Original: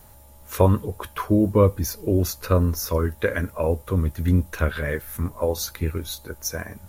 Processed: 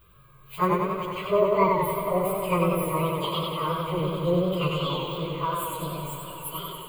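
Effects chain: pitch shift by moving bins +11.5 st; fixed phaser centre 1200 Hz, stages 8; on a send: swelling echo 89 ms, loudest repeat 5, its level -17 dB; on the sum: warbling echo 95 ms, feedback 67%, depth 89 cents, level -3 dB

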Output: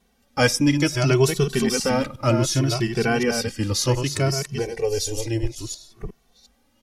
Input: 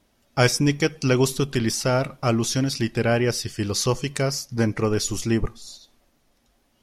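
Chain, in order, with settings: reverse delay 0.359 s, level -7 dB; 4.59–5.58 fixed phaser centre 520 Hz, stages 4; endless flanger 2.2 ms +0.64 Hz; gain +3.5 dB

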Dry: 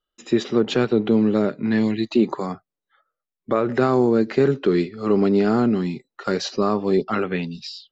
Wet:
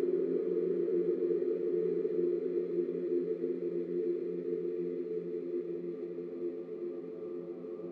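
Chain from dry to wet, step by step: band-pass sweep 320 Hz -> 660 Hz, 2.81–6.61; Paulstretch 43×, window 0.50 s, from 4.74; backlash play -51.5 dBFS; gain -8.5 dB

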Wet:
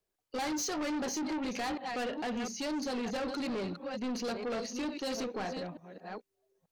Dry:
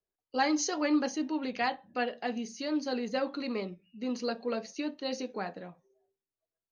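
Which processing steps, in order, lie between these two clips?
reverse delay 0.444 s, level -11.5 dB; in parallel at +3 dB: limiter -26.5 dBFS, peak gain reduction 10 dB; on the sum: soft clip -30.5 dBFS, distortion -7 dB; gain -1.5 dB

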